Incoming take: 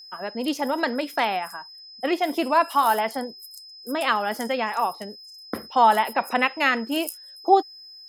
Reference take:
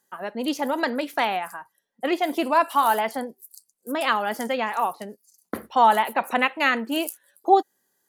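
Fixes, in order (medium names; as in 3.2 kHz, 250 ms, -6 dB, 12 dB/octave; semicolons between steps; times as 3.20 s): band-stop 5.1 kHz, Q 30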